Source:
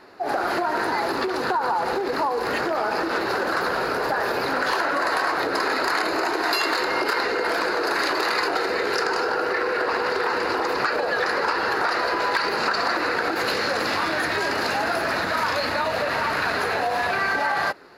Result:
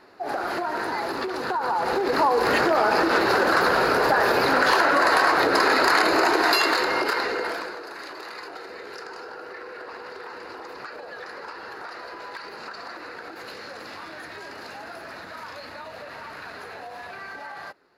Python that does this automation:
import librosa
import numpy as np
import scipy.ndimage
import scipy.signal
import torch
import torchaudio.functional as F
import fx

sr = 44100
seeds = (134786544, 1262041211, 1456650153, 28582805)

y = fx.gain(x, sr, db=fx.line((1.47, -4.0), (2.3, 4.0), (6.34, 4.0), (7.43, -3.5), (7.86, -15.0)))